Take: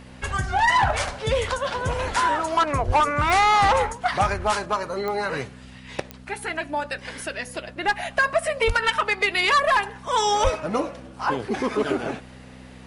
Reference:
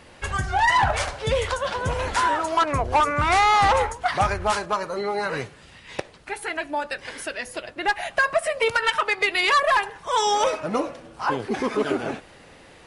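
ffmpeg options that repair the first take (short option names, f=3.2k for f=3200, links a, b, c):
-filter_complex "[0:a]adeclick=t=4,bandreject=f=63.4:t=h:w=4,bandreject=f=126.8:t=h:w=4,bandreject=f=190.2:t=h:w=4,bandreject=f=253.6:t=h:w=4,asplit=3[a][b][c];[a]afade=t=out:st=2.86:d=0.02[d];[b]highpass=f=140:w=0.5412,highpass=f=140:w=1.3066,afade=t=in:st=2.86:d=0.02,afade=t=out:st=2.98:d=0.02[e];[c]afade=t=in:st=2.98:d=0.02[f];[d][e][f]amix=inputs=3:normalize=0,asplit=3[g][h][i];[g]afade=t=out:st=8.66:d=0.02[j];[h]highpass=f=140:w=0.5412,highpass=f=140:w=1.3066,afade=t=in:st=8.66:d=0.02,afade=t=out:st=8.78:d=0.02[k];[i]afade=t=in:st=8.78:d=0.02[l];[j][k][l]amix=inputs=3:normalize=0,asplit=3[m][n][o];[m]afade=t=out:st=10.43:d=0.02[p];[n]highpass=f=140:w=0.5412,highpass=f=140:w=1.3066,afade=t=in:st=10.43:d=0.02,afade=t=out:st=10.55:d=0.02[q];[o]afade=t=in:st=10.55:d=0.02[r];[p][q][r]amix=inputs=3:normalize=0"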